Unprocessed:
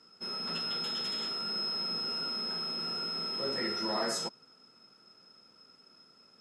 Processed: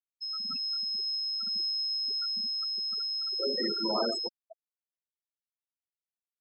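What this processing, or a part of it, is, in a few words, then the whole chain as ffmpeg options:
filter by subtraction: -filter_complex "[0:a]asplit=2[a][b];[b]lowpass=280,volume=-1[c];[a][c]amix=inputs=2:normalize=0,asplit=2[d][e];[e]adelay=501.5,volume=-13dB,highshelf=f=4k:g=-11.3[f];[d][f]amix=inputs=2:normalize=0,afftfilt=real='re*gte(hypot(re,im),0.0631)':imag='im*gte(hypot(re,im),0.0631)':win_size=1024:overlap=0.75,volume=3dB"

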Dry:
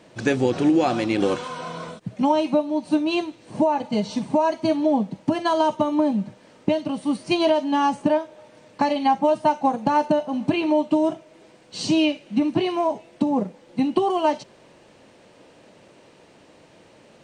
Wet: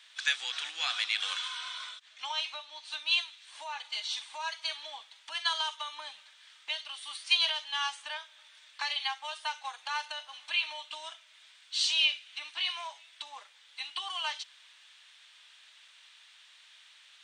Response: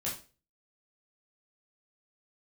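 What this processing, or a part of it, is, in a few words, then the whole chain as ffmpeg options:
headphones lying on a table: -filter_complex "[0:a]highpass=f=1.4k:w=0.5412,highpass=f=1.4k:w=1.3066,equalizer=f=3.5k:t=o:w=0.39:g=11.5,asettb=1/sr,asplit=3[a][b][c];[a]atrim=end=1.894[d];[b]atrim=start=1.89:end=2.99,asetpts=PTS-STARTPTS,afade=t=in:d=0.004:c=qsin,afade=t=out:st=1.096:d=0.004:c=qsin,lowpass=f=8.1k:w=0.5412,lowpass=f=8.1k:w=1.3066[e];[c]atrim=start=2.986[f];[d][e]acrossfade=d=0.004:c1=hsin:c2=qsin[g];[g][f]acrossfade=d=0.004:c1=qsin:c2=hsin,volume=-1.5dB"

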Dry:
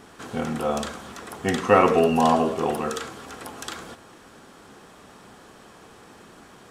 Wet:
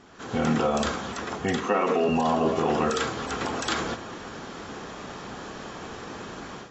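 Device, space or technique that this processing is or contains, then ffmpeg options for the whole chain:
low-bitrate web radio: -filter_complex "[0:a]asettb=1/sr,asplit=3[a][b][c];[a]atrim=end=1.644[d];[b]atrim=start=1.64:end=2.09,asetpts=PTS-STARTPTS,afade=t=in:d=0.004:c=qsin,afade=t=out:st=0.446:d=0.004:c=qsin,highpass=f=200:w=0.5412,highpass=f=200:w=1.3066[e];[c]atrim=start=2.086[f];[d][e]acrossfade=d=0.004:c1=hsin:c2=qsin[g];[g][f]acrossfade=d=0.004:c1=qsin:c2=hsin,dynaudnorm=f=220:g=3:m=13dB,alimiter=limit=-10.5dB:level=0:latency=1:release=39,volume=-4.5dB" -ar 22050 -c:a aac -b:a 24k

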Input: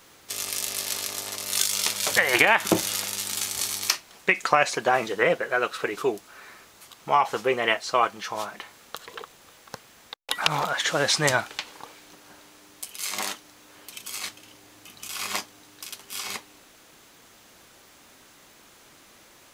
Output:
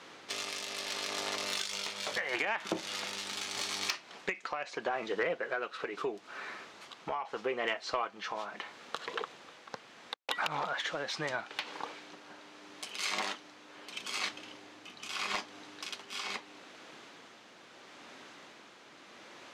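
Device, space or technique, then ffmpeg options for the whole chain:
AM radio: -filter_complex "[0:a]asettb=1/sr,asplit=3[a][b][c];[a]atrim=end=1.714[d];[b]atrim=start=1.71:end=2.28,asetpts=PTS-STARTPTS,afade=t=in:d=0.004:c=qsin,afade=t=out:st=0.566:d=0.004:c=qsin,asplit=2[e][f];[f]adelay=20,volume=-7dB[g];[e][g]amix=inputs=2:normalize=0,atrim=end_sample=25137[h];[c]atrim=start=2.276[i];[d][h]acrossfade=d=0.004:c1=hsin:c2=qsin[j];[j][i]acrossfade=d=0.004:c1=qsin:c2=hsin,highpass=190,lowpass=4.1k,acompressor=threshold=-33dB:ratio=6,asoftclip=type=tanh:threshold=-23dB,tremolo=f=0.77:d=0.4,volume=4dB"

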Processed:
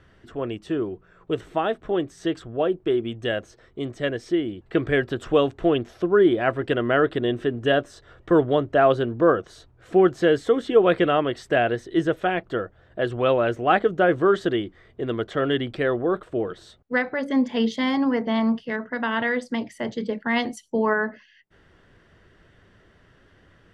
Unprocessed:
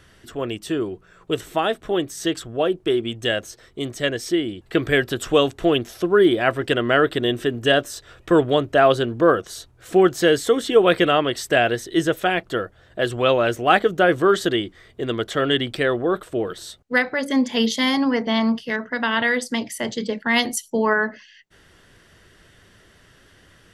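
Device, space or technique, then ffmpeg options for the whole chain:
through cloth: -filter_complex "[0:a]lowpass=9.5k,highshelf=f=3.6k:g=-17,asettb=1/sr,asplit=3[a][b][c];[a]atrim=end=7.944[d];[b]atrim=start=7.94:end=8.71,asetpts=PTS-STARTPTS,afade=t=in:d=0.004:c=qsin,afade=t=out:st=0.766:d=0.004:c=qsin,bandreject=f=2.5k:w=10[e];[c]atrim=start=8.706[f];[d][e]acrossfade=d=0.004:c1=hsin:c2=qsin[g];[g][f]acrossfade=d=0.004:c1=qsin:c2=hsin,volume=-1.5dB"

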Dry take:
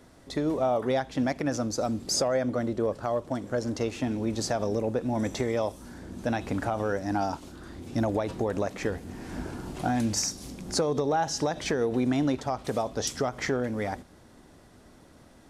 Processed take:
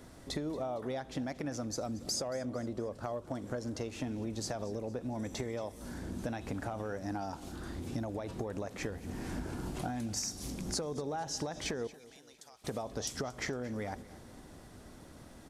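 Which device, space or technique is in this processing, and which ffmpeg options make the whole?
ASMR close-microphone chain: -filter_complex "[0:a]lowshelf=f=170:g=3.5,acompressor=threshold=-35dB:ratio=6,highshelf=f=7.2k:g=4.5,asettb=1/sr,asplit=3[a][b][c];[a]atrim=end=11.874[d];[b]atrim=start=11.87:end=12.64,asetpts=PTS-STARTPTS,afade=t=in:d=0.004:c=qsin,afade=t=out:st=0.766:d=0.004:c=qsin,aderivative[e];[c]atrim=start=12.636[f];[d][e]acrossfade=d=0.004:c1=hsin:c2=qsin[g];[g][f]acrossfade=d=0.004:c1=qsin:c2=hsin,aecho=1:1:229|458|687|916:0.112|0.0561|0.0281|0.014"

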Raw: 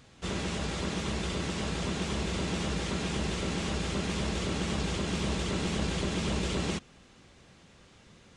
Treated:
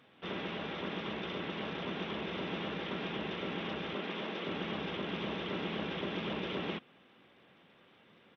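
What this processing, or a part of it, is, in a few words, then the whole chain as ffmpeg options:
Bluetooth headset: -filter_complex "[0:a]asettb=1/sr,asplit=3[a][b][c];[a]atrim=end=3.954[d];[b]atrim=start=3.95:end=4.47,asetpts=PTS-STARTPTS,afade=t=in:d=0.004:c=qsin,afade=t=out:st=0.516:d=0.004:c=qsin,highpass=200[e];[c]atrim=start=4.466[f];[d][e]acrossfade=d=0.004:c1=hsin:c2=qsin[g];[g][f]acrossfade=d=0.004:c1=qsin:c2=hsin,highpass=220,aresample=8000,aresample=44100,volume=-3dB" -ar 32000 -c:a sbc -b:a 64k

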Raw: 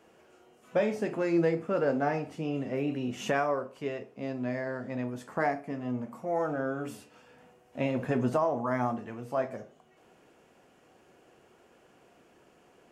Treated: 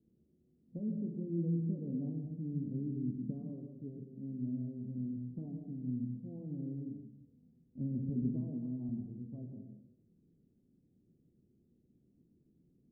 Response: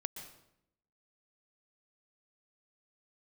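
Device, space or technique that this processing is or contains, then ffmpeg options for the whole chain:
next room: -filter_complex "[0:a]asettb=1/sr,asplit=3[a][b][c];[a]atrim=end=8.094[d];[b]atrim=start=8.09:end=8.89,asetpts=PTS-STARTPTS,afade=t=in:d=0.004:c=qsin,afade=t=out:st=0.796:d=0.004:c=qsin,highpass=140[e];[c]atrim=start=8.886[f];[d][e]acrossfade=d=0.004:c1=hsin:c2=qsin[g];[g][f]acrossfade=d=0.004:c1=qsin:c2=hsin,lowpass=f=250:w=0.5412,lowpass=f=250:w=1.3066[h];[1:a]atrim=start_sample=2205[i];[h][i]afir=irnorm=-1:irlink=0"

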